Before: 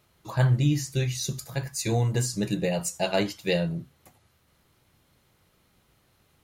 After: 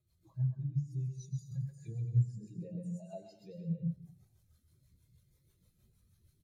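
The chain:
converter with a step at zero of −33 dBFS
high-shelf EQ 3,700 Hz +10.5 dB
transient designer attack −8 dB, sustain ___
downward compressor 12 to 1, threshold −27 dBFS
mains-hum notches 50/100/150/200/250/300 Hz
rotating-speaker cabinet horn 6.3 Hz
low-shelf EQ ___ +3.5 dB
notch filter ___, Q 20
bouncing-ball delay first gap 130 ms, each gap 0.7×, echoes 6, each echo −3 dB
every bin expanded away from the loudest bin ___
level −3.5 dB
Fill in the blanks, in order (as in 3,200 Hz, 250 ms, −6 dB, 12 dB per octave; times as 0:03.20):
+4 dB, 92 Hz, 2,900 Hz, 2.5 to 1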